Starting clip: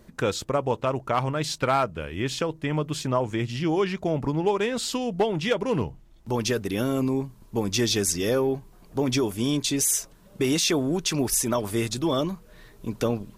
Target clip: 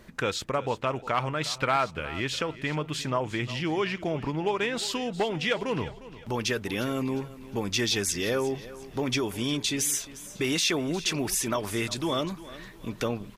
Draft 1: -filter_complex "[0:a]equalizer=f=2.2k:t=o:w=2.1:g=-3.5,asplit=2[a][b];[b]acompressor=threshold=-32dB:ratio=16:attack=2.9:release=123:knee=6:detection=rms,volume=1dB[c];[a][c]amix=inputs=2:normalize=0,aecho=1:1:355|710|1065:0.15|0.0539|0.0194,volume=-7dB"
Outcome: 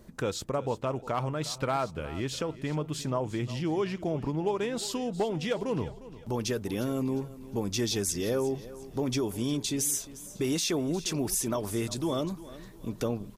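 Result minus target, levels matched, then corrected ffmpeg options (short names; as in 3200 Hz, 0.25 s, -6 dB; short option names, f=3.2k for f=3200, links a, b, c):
2000 Hz band -7.5 dB
-filter_complex "[0:a]equalizer=f=2.2k:t=o:w=2.1:g=8,asplit=2[a][b];[b]acompressor=threshold=-32dB:ratio=16:attack=2.9:release=123:knee=6:detection=rms,volume=1dB[c];[a][c]amix=inputs=2:normalize=0,aecho=1:1:355|710|1065:0.15|0.0539|0.0194,volume=-7dB"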